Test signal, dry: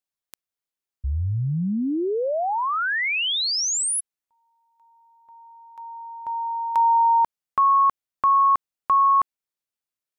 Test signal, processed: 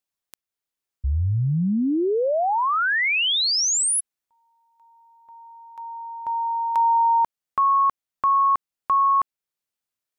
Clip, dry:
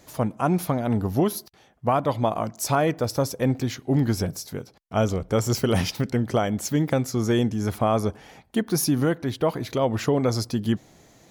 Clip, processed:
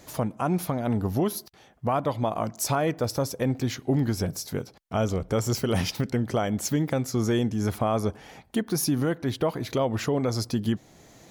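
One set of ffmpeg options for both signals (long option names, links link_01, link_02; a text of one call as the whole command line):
ffmpeg -i in.wav -af "alimiter=limit=-17.5dB:level=0:latency=1:release=456,volume=2.5dB" out.wav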